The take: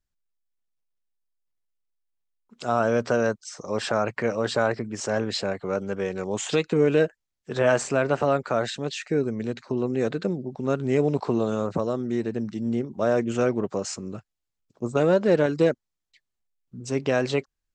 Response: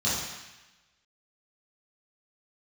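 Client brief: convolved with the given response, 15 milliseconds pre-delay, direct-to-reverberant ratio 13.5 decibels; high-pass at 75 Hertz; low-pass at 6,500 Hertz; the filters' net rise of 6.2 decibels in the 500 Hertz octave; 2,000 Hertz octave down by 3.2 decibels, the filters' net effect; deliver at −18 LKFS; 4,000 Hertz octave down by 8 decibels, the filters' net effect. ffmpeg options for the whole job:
-filter_complex "[0:a]highpass=75,lowpass=6500,equalizer=frequency=500:width_type=o:gain=7.5,equalizer=frequency=2000:width_type=o:gain=-3.5,equalizer=frequency=4000:width_type=o:gain=-8.5,asplit=2[link_01][link_02];[1:a]atrim=start_sample=2205,adelay=15[link_03];[link_02][link_03]afir=irnorm=-1:irlink=0,volume=-25dB[link_04];[link_01][link_04]amix=inputs=2:normalize=0,volume=2.5dB"

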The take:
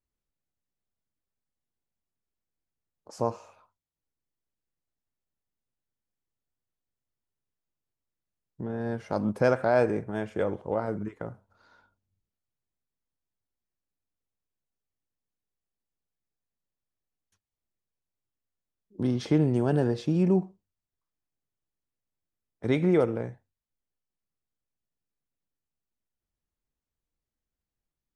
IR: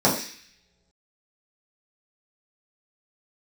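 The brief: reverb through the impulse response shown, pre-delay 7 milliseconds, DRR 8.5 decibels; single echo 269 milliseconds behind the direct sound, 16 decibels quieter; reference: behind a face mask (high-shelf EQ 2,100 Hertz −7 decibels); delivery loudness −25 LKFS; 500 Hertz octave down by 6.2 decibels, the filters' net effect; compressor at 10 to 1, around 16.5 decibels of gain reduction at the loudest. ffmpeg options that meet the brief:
-filter_complex "[0:a]equalizer=frequency=500:width_type=o:gain=-7.5,acompressor=threshold=-38dB:ratio=10,aecho=1:1:269:0.158,asplit=2[link_01][link_02];[1:a]atrim=start_sample=2205,adelay=7[link_03];[link_02][link_03]afir=irnorm=-1:irlink=0,volume=-27dB[link_04];[link_01][link_04]amix=inputs=2:normalize=0,highshelf=frequency=2100:gain=-7,volume=17.5dB"

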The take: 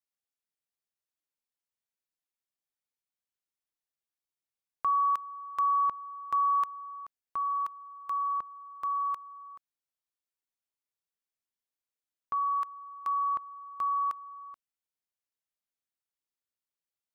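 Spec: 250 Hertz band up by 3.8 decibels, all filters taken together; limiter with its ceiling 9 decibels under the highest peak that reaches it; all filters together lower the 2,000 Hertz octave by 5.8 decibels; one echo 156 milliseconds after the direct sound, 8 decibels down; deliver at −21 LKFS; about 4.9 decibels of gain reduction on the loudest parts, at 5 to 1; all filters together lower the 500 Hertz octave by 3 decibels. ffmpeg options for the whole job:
ffmpeg -i in.wav -af "equalizer=frequency=250:width_type=o:gain=6.5,equalizer=frequency=500:width_type=o:gain=-5,equalizer=frequency=2000:width_type=o:gain=-8,acompressor=threshold=-32dB:ratio=5,alimiter=level_in=9dB:limit=-24dB:level=0:latency=1,volume=-9dB,aecho=1:1:156:0.398,volume=18dB" out.wav

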